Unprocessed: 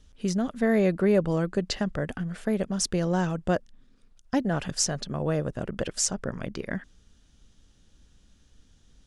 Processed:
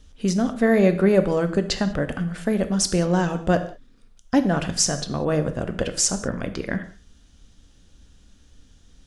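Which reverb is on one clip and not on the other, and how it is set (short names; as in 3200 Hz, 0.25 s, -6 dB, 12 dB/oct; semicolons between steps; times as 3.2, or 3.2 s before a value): non-linear reverb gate 0.22 s falling, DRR 8.5 dB; gain +5 dB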